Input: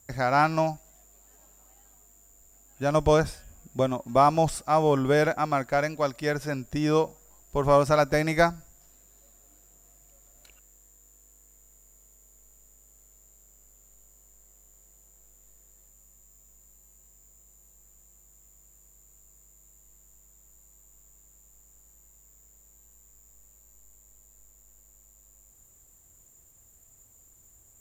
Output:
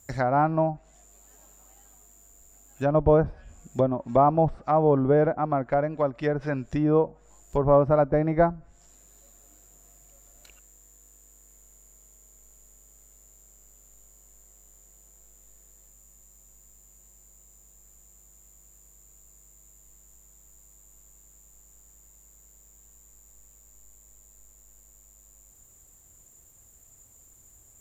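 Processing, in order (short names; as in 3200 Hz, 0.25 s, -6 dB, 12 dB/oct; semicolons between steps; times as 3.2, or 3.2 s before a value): treble ducked by the level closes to 850 Hz, closed at -22.5 dBFS; gain +2.5 dB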